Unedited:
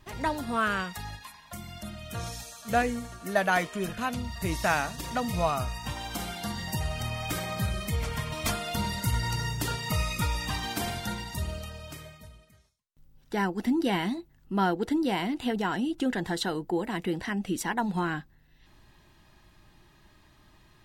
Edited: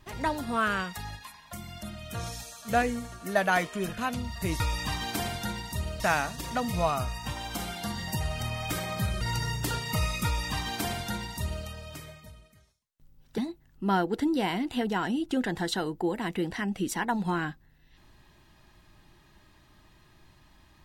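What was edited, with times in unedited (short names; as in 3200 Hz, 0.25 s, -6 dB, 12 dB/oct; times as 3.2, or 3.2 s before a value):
7.81–9.18 cut
10.22–11.62 copy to 4.6
13.35–14.07 cut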